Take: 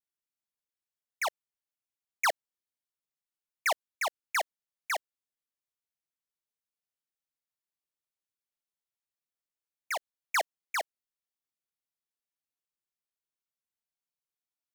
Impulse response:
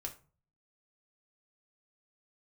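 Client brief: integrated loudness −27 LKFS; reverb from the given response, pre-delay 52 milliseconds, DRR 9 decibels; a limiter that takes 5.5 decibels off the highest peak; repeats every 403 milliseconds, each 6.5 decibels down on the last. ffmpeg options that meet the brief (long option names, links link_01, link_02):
-filter_complex "[0:a]alimiter=level_in=5dB:limit=-24dB:level=0:latency=1,volume=-5dB,aecho=1:1:403|806|1209|1612|2015|2418:0.473|0.222|0.105|0.0491|0.0231|0.0109,asplit=2[link_01][link_02];[1:a]atrim=start_sample=2205,adelay=52[link_03];[link_02][link_03]afir=irnorm=-1:irlink=0,volume=-7dB[link_04];[link_01][link_04]amix=inputs=2:normalize=0,volume=10dB"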